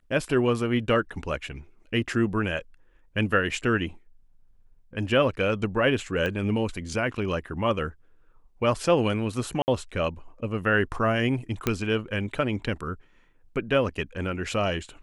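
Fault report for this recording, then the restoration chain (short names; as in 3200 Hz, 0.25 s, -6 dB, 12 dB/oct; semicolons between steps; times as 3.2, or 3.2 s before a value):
6.26 pop -17 dBFS
9.62–9.68 gap 59 ms
11.67 pop -9 dBFS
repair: de-click; interpolate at 9.62, 59 ms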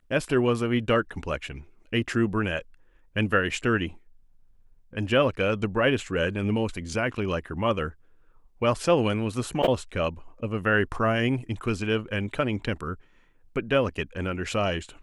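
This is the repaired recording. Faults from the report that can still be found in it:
6.26 pop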